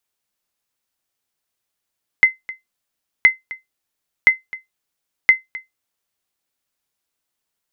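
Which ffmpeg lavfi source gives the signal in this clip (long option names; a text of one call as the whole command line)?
ffmpeg -f lavfi -i "aevalsrc='0.841*(sin(2*PI*2060*mod(t,1.02))*exp(-6.91*mod(t,1.02)/0.16)+0.106*sin(2*PI*2060*max(mod(t,1.02)-0.26,0))*exp(-6.91*max(mod(t,1.02)-0.26,0)/0.16))':duration=4.08:sample_rate=44100" out.wav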